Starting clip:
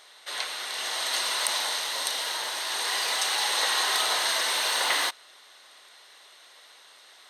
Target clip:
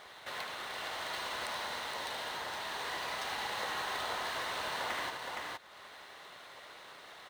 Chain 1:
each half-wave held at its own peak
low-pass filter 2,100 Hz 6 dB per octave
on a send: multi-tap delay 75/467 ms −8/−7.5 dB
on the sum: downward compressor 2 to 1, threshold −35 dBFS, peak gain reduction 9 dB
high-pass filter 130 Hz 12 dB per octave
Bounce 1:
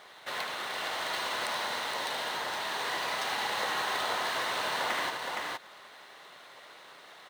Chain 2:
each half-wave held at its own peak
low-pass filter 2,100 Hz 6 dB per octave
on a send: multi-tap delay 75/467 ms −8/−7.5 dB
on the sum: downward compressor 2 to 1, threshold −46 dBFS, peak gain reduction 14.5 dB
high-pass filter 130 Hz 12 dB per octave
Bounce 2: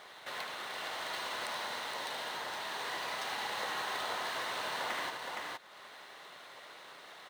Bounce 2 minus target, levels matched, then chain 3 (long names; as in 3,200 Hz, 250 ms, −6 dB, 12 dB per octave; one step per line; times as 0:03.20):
125 Hz band −3.5 dB
each half-wave held at its own peak
low-pass filter 2,100 Hz 6 dB per octave
on a send: multi-tap delay 75/467 ms −8/−7.5 dB
on the sum: downward compressor 2 to 1, threshold −46 dBFS, peak gain reduction 14.5 dB
high-pass filter 48 Hz 12 dB per octave